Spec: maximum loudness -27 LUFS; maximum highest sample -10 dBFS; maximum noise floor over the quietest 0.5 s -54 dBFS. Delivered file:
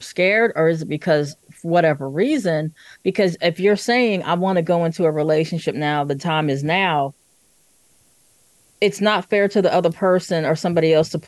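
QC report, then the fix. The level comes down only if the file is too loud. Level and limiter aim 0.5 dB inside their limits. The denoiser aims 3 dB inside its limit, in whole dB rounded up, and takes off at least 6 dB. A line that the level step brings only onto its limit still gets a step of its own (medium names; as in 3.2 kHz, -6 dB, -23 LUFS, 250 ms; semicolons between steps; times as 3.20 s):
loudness -19.0 LUFS: fail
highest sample -6.0 dBFS: fail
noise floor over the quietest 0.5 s -58 dBFS: pass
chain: trim -8.5 dB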